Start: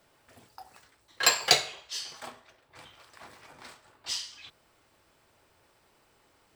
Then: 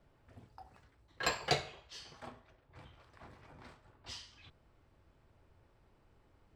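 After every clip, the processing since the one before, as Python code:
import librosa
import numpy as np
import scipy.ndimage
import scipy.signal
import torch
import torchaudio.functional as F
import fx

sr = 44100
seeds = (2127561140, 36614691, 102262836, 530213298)

y = fx.riaa(x, sr, side='playback')
y = F.gain(torch.from_numpy(y), -7.0).numpy()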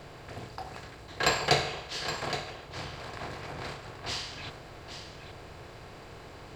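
y = fx.bin_compress(x, sr, power=0.6)
y = y + 10.0 ** (-10.0 / 20.0) * np.pad(y, (int(819 * sr / 1000.0), 0))[:len(y)]
y = F.gain(torch.from_numpy(y), 6.0).numpy()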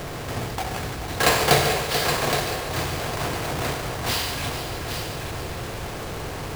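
y = fx.halfwave_hold(x, sr)
y = fx.power_curve(y, sr, exponent=0.7)
y = fx.echo_heads(y, sr, ms=145, heads='first and third', feedback_pct=44, wet_db=-11)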